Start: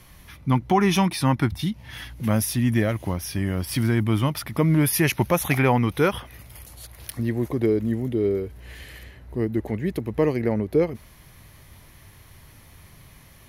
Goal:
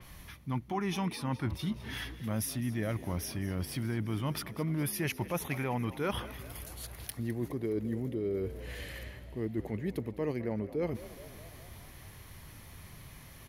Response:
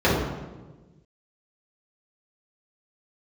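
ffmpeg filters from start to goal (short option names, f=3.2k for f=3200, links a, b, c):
-filter_complex "[0:a]areverse,acompressor=threshold=-30dB:ratio=5,areverse,asplit=7[a][b][c][d][e][f][g];[b]adelay=208,afreqshift=49,volume=-16.5dB[h];[c]adelay=416,afreqshift=98,volume=-20.7dB[i];[d]adelay=624,afreqshift=147,volume=-24.8dB[j];[e]adelay=832,afreqshift=196,volume=-29dB[k];[f]adelay=1040,afreqshift=245,volume=-33.1dB[l];[g]adelay=1248,afreqshift=294,volume=-37.3dB[m];[a][h][i][j][k][l][m]amix=inputs=7:normalize=0,adynamicequalizer=threshold=0.00355:dfrequency=4500:dqfactor=0.7:tfrequency=4500:tqfactor=0.7:attack=5:release=100:ratio=0.375:range=2:mode=cutabove:tftype=highshelf,volume=-1.5dB"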